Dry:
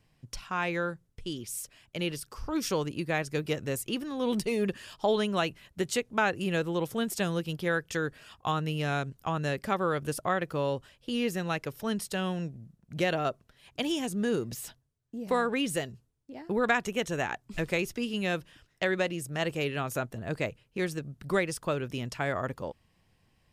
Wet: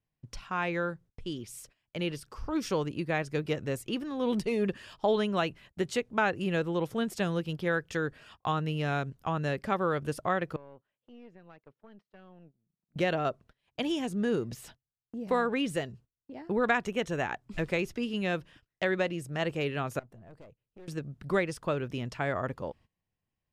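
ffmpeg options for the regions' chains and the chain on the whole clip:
-filter_complex "[0:a]asettb=1/sr,asplit=3[s0][s1][s2];[s0]atrim=end=10.564[s3];[s1]atrim=start=10.56:end=12.96,asetpts=PTS-STARTPTS,afade=t=in:d=0.004:c=qsin,afade=t=out:st=2.396:d=0.004:c=qsin,acompressor=threshold=0.00316:ratio=3:attack=3.2:release=140:knee=1:detection=peak,highpass=160,lowpass=2400,aeval=exprs='(tanh(126*val(0)+0.75)-tanh(0.75))/126':c=same[s4];[s2]atrim=start=12.956[s5];[s3][s4]acrossfade=d=0.004:c1=hsin:c2=qsin[s6];[s6][s5]acrossfade=d=0.004:c1=qsin:c2=hsin,asettb=1/sr,asplit=3[s7][s8][s9];[s7]atrim=end=19.994[s10];[s8]atrim=start=19.99:end=20.88,asetpts=PTS-STARTPTS,afade=t=in:d=0.004:c=qsin,afade=t=out:st=0.886:d=0.004:c=qsin,aeval=exprs='clip(val(0),-1,0.0133)':c=same,acompressor=threshold=0.00126:ratio=2:attack=3.2:release=140:knee=1:detection=peak,equalizer=f=3100:w=0.4:g=-6[s11];[s9]atrim=start=20.876[s12];[s10][s11]acrossfade=d=0.004:c1=hsin:c2=qsin[s13];[s13][s12]acrossfade=d=0.004:c1=qsin:c2=hsin,lowpass=f=3200:p=1,agate=range=0.112:threshold=0.002:ratio=16:detection=peak"

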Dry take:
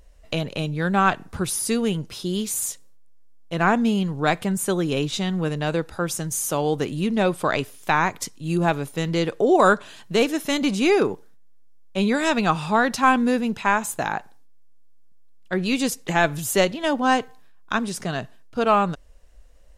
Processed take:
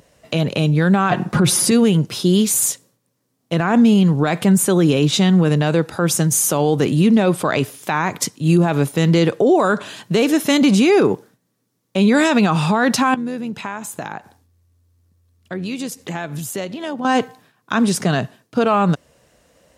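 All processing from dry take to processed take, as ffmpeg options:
-filter_complex "[0:a]asettb=1/sr,asplit=3[s0][s1][s2];[s0]atrim=end=1.104[s3];[s1]atrim=start=1.1:end=1.71,asetpts=PTS-STARTPTS,afade=t=in:d=0.004:c=qsin,afade=t=out:st=0.606:d=0.004:c=qsin,aemphasis=mode=reproduction:type=cd,aecho=1:1:5.6:0.73,atrim=end_sample=26901,acontrast=48[s4];[s2]atrim=start=1.706[s5];[s3][s4]acrossfade=d=0.004:c1=hsin:c2=qsin[s6];[s6][s5]acrossfade=d=0.004:c1=qsin:c2=hsin,asettb=1/sr,asplit=3[s7][s8][s9];[s7]atrim=end=13.144[s10];[s8]atrim=start=13.14:end=17.05,asetpts=PTS-STARTPTS,afade=t=in:d=0.004:c=qsin,afade=t=out:st=3.906:d=0.004:c=qsin,acompressor=threshold=0.0141:ratio=3:attack=3.2:release=140:knee=1:detection=peak,tremolo=f=86:d=0.333[s11];[s9]atrim=start=17.046[s12];[s10][s11]acrossfade=d=0.004:c1=hsin:c2=qsin[s13];[s13][s12]acrossfade=d=0.004:c1=qsin:c2=hsin,highpass=f=110:w=0.5412,highpass=f=110:w=1.3066,lowshelf=f=360:g=4.5,alimiter=level_in=5.31:limit=0.891:release=50:level=0:latency=1,volume=0.531"

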